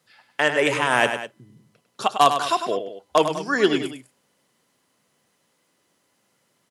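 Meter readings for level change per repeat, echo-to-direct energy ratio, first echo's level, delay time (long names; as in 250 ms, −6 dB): −5.5 dB, −7.5 dB, −8.5 dB, 100 ms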